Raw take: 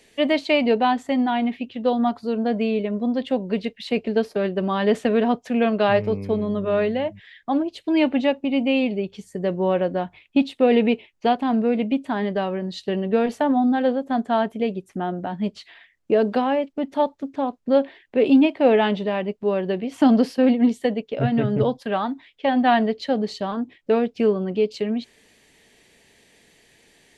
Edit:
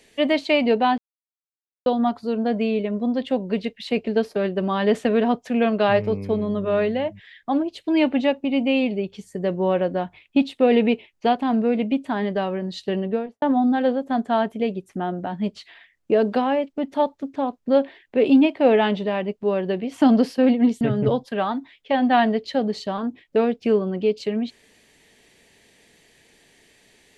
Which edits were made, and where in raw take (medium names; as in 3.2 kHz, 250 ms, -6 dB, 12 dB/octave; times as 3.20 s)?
0.98–1.86 s: mute
12.97–13.42 s: studio fade out
20.81–21.35 s: delete